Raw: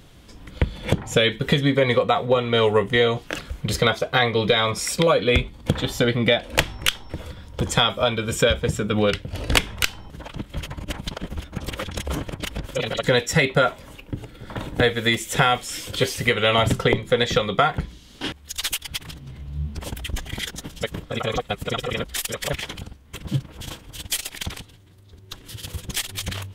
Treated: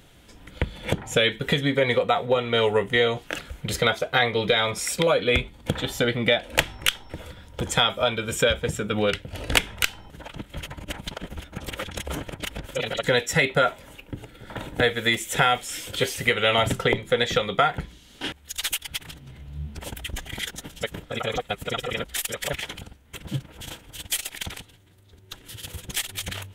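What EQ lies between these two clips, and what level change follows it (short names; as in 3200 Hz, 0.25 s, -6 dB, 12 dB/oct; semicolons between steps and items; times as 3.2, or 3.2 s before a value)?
low shelf 430 Hz -6 dB; bell 4900 Hz -5 dB 0.65 oct; notch 1100 Hz, Q 8.1; 0.0 dB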